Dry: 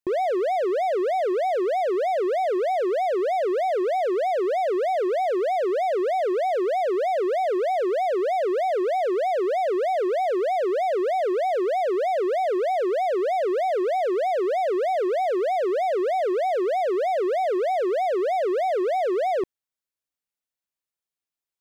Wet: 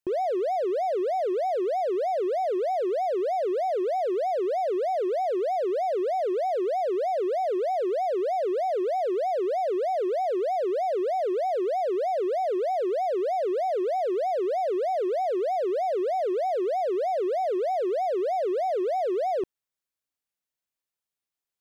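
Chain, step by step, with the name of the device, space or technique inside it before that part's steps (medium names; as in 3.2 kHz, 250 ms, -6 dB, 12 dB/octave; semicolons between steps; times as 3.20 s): limiter into clipper (peak limiter -20.5 dBFS, peak gain reduction 2.5 dB; hard clipper -23 dBFS, distortion -20 dB)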